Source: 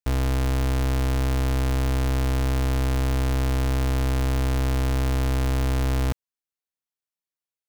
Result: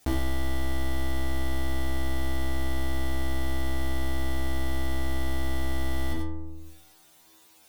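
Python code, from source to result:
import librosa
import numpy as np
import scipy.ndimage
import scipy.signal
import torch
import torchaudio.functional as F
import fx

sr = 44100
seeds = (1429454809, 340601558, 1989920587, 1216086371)

p1 = fx.stiff_resonator(x, sr, f0_hz=79.0, decay_s=0.56, stiffness=0.002)
p2 = fx.small_body(p1, sr, hz=(300.0, 730.0, 3600.0), ring_ms=25, db=9)
p3 = p2 + fx.echo_single(p2, sr, ms=90, db=-9.0, dry=0)
p4 = fx.env_flatten(p3, sr, amount_pct=70)
y = F.gain(torch.from_numpy(p4), 6.0).numpy()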